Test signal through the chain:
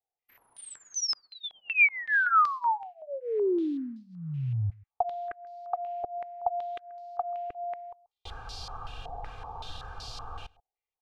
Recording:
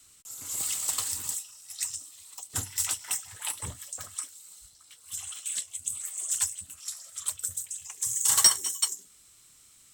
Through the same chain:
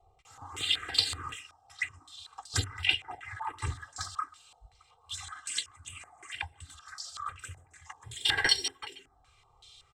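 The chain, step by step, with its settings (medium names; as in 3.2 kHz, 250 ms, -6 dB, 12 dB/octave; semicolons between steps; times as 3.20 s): comb 2.5 ms, depth 95%; touch-sensitive phaser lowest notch 270 Hz, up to 1.2 kHz, full sweep at -23.5 dBFS; modulation noise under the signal 34 dB; echo from a far wall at 23 m, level -24 dB; step-sequenced low-pass 5.3 Hz 740–4600 Hz; trim +4 dB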